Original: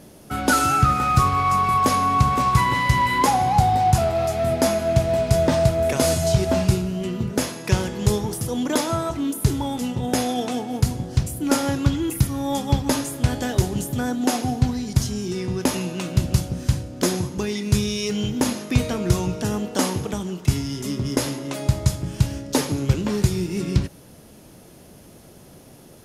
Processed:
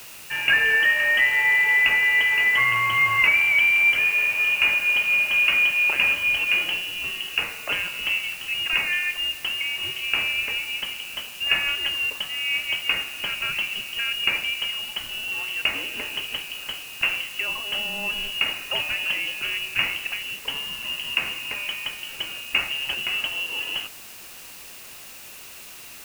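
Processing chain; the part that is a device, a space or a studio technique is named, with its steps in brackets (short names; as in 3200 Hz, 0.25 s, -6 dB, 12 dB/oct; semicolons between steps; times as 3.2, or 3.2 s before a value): scrambled radio voice (BPF 300–3200 Hz; inverted band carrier 3100 Hz; white noise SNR 18 dB); gain +1 dB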